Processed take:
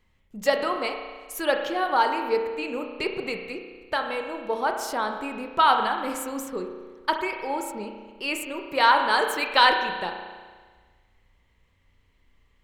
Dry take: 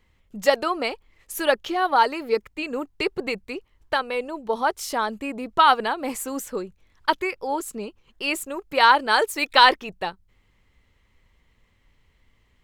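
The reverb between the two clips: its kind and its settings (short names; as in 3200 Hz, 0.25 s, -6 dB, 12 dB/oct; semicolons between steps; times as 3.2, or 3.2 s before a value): spring tank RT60 1.5 s, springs 33 ms, chirp 30 ms, DRR 4 dB; gain -3.5 dB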